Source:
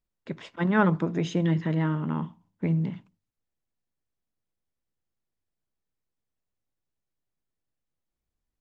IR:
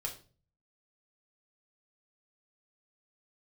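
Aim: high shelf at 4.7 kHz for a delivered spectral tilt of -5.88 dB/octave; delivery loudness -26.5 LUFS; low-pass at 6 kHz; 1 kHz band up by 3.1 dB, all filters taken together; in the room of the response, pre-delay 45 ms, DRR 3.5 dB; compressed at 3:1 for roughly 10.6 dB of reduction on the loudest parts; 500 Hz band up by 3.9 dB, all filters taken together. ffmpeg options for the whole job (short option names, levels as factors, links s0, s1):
-filter_complex "[0:a]lowpass=6000,equalizer=f=500:t=o:g=4.5,equalizer=f=1000:t=o:g=3,highshelf=f=4700:g=-7.5,acompressor=threshold=0.0398:ratio=3,asplit=2[s0][s1];[1:a]atrim=start_sample=2205,adelay=45[s2];[s1][s2]afir=irnorm=-1:irlink=0,volume=0.631[s3];[s0][s3]amix=inputs=2:normalize=0,volume=1.78"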